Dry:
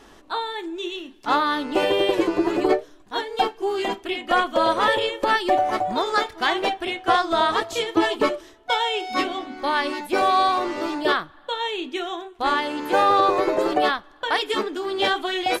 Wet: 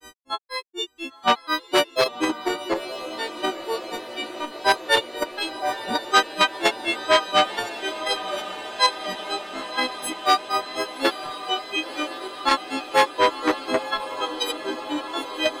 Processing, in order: frequency quantiser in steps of 4 st; in parallel at +2 dB: level quantiser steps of 20 dB; on the sum: grains 0.142 s, grains 4.1/s, spray 19 ms, pitch spread up and down by 3 st; diffused feedback echo 0.995 s, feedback 74%, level -14 dB; core saturation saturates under 1900 Hz

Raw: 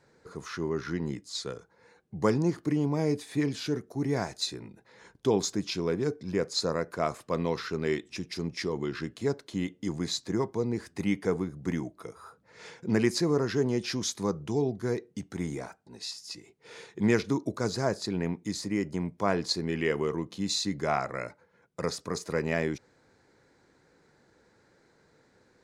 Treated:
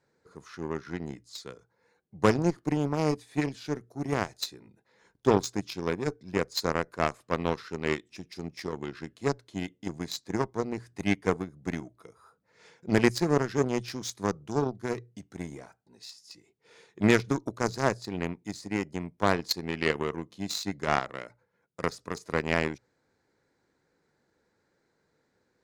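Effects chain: added harmonics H 7 -19 dB, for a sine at -10 dBFS; notches 60/120 Hz; gain +4 dB

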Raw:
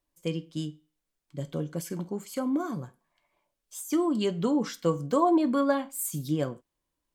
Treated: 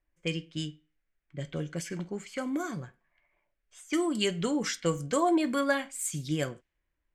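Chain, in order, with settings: low-pass opened by the level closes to 1600 Hz, open at -23 dBFS; ten-band EQ 125 Hz -7 dB, 250 Hz -10 dB, 500 Hz -6 dB, 1000 Hz -12 dB, 2000 Hz +6 dB, 4000 Hz -5 dB, 8000 Hz +4 dB; gain +7.5 dB

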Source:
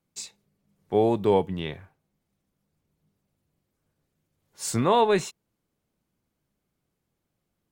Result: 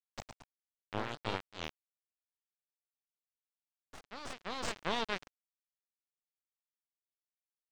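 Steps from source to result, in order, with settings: Wiener smoothing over 25 samples; pre-emphasis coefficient 0.97; compressor 1.5:1, threshold -51 dBFS, peak gain reduction 8 dB; tube stage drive 34 dB, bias 0.8; sample gate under -45 dBFS; echoes that change speed 0.131 s, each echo +2 st, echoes 2, each echo -6 dB; air absorption 180 m; gain +18 dB

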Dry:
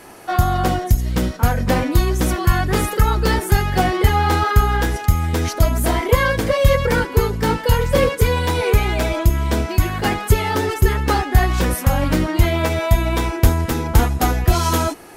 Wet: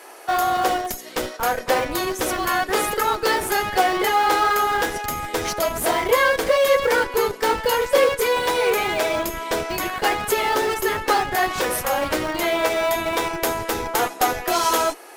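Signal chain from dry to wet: HPF 390 Hz 24 dB/oct; in parallel at -10.5 dB: Schmitt trigger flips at -22 dBFS

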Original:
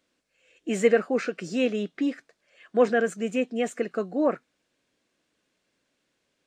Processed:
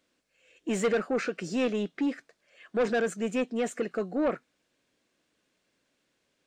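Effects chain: soft clip -21 dBFS, distortion -10 dB

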